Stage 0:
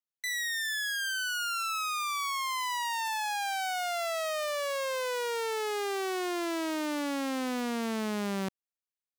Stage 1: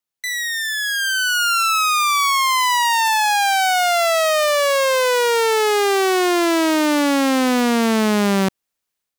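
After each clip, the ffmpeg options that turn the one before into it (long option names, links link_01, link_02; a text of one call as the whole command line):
ffmpeg -i in.wav -af "dynaudnorm=framelen=750:gausssize=3:maxgain=7dB,volume=8.5dB" out.wav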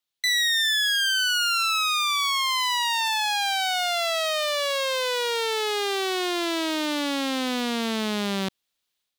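ffmpeg -i in.wav -af "equalizer=frequency=3600:width=1.5:gain=10,alimiter=limit=-14dB:level=0:latency=1:release=33,volume=-2dB" out.wav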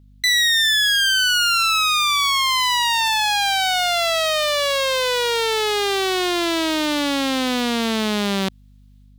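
ffmpeg -i in.wav -af "aeval=exprs='val(0)+0.00224*(sin(2*PI*50*n/s)+sin(2*PI*2*50*n/s)/2+sin(2*PI*3*50*n/s)/3+sin(2*PI*4*50*n/s)/4+sin(2*PI*5*50*n/s)/5)':channel_layout=same,volume=5.5dB" out.wav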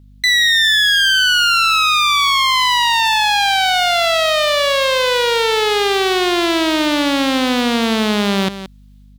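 ffmpeg -i in.wav -filter_complex "[0:a]asplit=2[link_01][link_02];[link_02]adelay=174.9,volume=-12dB,highshelf=frequency=4000:gain=-3.94[link_03];[link_01][link_03]amix=inputs=2:normalize=0,acrossover=split=4400[link_04][link_05];[link_05]acompressor=threshold=-29dB:ratio=4:attack=1:release=60[link_06];[link_04][link_06]amix=inputs=2:normalize=0,volume=5dB" out.wav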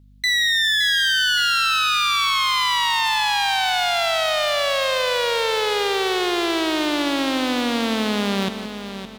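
ffmpeg -i in.wav -af "aecho=1:1:567|1134|1701|2268:0.299|0.119|0.0478|0.0191,volume=-6dB" out.wav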